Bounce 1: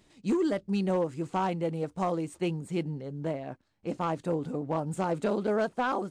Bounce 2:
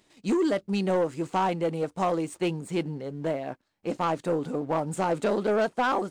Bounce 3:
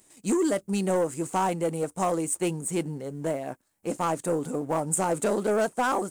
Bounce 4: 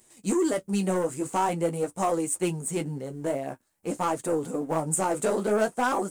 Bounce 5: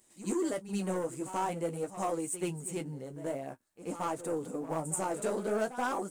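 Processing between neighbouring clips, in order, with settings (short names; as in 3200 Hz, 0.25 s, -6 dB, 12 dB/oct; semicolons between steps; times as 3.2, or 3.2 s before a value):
low shelf 170 Hz -11.5 dB; sample leveller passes 1; gain +2.5 dB
resonant high shelf 6100 Hz +13.5 dB, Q 1.5
flange 0.47 Hz, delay 7.9 ms, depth 8.6 ms, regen -26%; gain +3.5 dB
reverse echo 82 ms -13 dB; gain -7.5 dB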